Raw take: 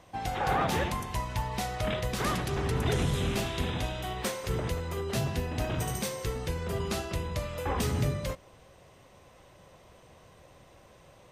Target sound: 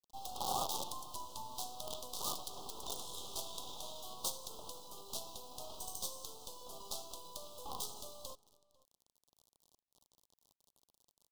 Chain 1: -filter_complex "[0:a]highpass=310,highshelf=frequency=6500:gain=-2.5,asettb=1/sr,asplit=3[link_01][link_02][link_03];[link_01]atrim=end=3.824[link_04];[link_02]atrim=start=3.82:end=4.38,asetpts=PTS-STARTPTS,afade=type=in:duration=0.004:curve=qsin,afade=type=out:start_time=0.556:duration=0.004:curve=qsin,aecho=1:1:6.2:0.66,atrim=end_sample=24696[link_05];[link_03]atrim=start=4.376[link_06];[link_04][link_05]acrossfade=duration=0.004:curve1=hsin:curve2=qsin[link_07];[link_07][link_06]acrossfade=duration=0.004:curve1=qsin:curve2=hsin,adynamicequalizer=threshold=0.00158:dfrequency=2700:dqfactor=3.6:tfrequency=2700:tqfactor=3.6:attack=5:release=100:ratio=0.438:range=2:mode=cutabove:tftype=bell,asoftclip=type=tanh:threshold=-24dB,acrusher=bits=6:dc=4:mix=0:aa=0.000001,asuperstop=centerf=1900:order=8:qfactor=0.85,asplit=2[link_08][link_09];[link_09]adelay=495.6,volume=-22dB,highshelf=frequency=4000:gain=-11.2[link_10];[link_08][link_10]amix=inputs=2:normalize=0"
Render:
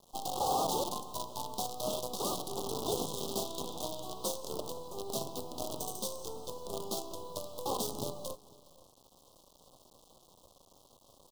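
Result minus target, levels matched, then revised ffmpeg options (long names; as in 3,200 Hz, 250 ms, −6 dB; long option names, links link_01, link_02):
250 Hz band +8.5 dB
-filter_complex "[0:a]highpass=1100,highshelf=frequency=6500:gain=-2.5,asettb=1/sr,asplit=3[link_01][link_02][link_03];[link_01]atrim=end=3.824[link_04];[link_02]atrim=start=3.82:end=4.38,asetpts=PTS-STARTPTS,afade=type=in:duration=0.004:curve=qsin,afade=type=out:start_time=0.556:duration=0.004:curve=qsin,aecho=1:1:6.2:0.66,atrim=end_sample=24696[link_05];[link_03]atrim=start=4.376[link_06];[link_04][link_05]acrossfade=duration=0.004:curve1=hsin:curve2=qsin[link_07];[link_07][link_06]acrossfade=duration=0.004:curve1=qsin:curve2=hsin,adynamicequalizer=threshold=0.00158:dfrequency=2700:dqfactor=3.6:tfrequency=2700:tqfactor=3.6:attack=5:release=100:ratio=0.438:range=2:mode=cutabove:tftype=bell,asoftclip=type=tanh:threshold=-24dB,acrusher=bits=6:dc=4:mix=0:aa=0.000001,asuperstop=centerf=1900:order=8:qfactor=0.85,asplit=2[link_08][link_09];[link_09]adelay=495.6,volume=-22dB,highshelf=frequency=4000:gain=-11.2[link_10];[link_08][link_10]amix=inputs=2:normalize=0"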